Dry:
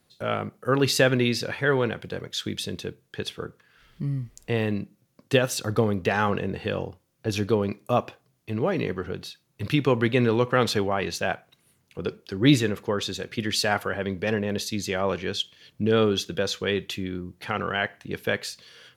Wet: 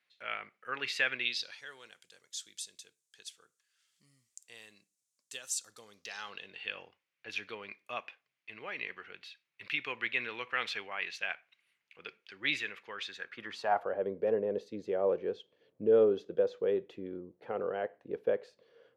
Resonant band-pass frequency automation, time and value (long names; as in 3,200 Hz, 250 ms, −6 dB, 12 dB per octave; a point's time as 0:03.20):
resonant band-pass, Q 2.7
0:01.14 2,200 Hz
0:01.72 7,600 Hz
0:05.78 7,600 Hz
0:06.77 2,300 Hz
0:13.00 2,300 Hz
0:14.05 490 Hz